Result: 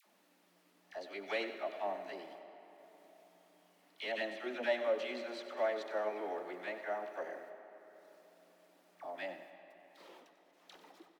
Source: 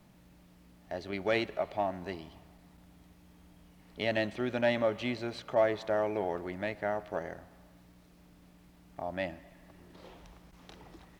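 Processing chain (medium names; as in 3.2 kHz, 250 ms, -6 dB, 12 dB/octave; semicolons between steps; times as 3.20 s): Bessel high-pass 390 Hz, order 8; gate -56 dBFS, range -23 dB; upward compressor, threshold -45 dBFS; phase dispersion lows, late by 62 ms, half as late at 940 Hz; flange 0.71 Hz, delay 0.3 ms, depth 7 ms, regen +65%; delay 95 ms -12.5 dB; reverberation RT60 4.0 s, pre-delay 80 ms, DRR 10.5 dB; trim -1 dB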